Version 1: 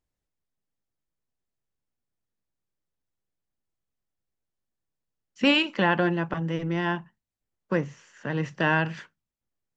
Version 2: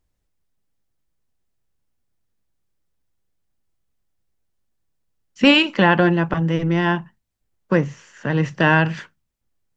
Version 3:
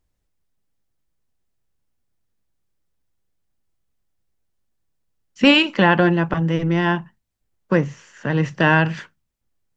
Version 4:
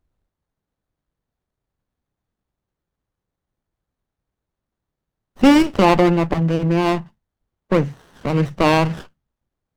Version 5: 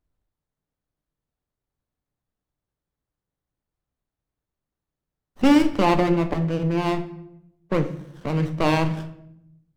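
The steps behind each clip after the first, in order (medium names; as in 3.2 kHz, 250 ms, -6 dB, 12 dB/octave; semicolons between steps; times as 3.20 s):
bass shelf 110 Hz +7 dB; trim +7 dB
no audible change
sliding maximum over 17 samples; trim +2 dB
simulated room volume 210 m³, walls mixed, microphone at 0.38 m; trim -6 dB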